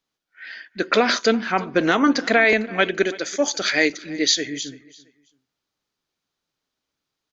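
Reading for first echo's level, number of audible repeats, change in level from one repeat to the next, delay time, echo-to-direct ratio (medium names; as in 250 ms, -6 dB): -20.5 dB, 2, -11.5 dB, 335 ms, -20.0 dB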